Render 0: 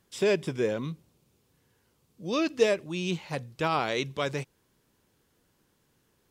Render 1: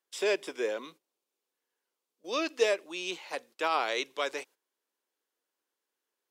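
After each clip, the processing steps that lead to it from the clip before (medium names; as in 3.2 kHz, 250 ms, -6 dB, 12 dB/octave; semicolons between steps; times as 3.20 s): Bessel high-pass 490 Hz, order 6; gate -53 dBFS, range -14 dB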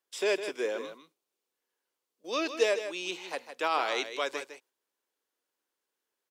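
delay 157 ms -10 dB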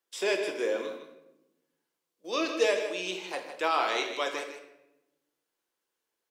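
simulated room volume 340 m³, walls mixed, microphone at 0.75 m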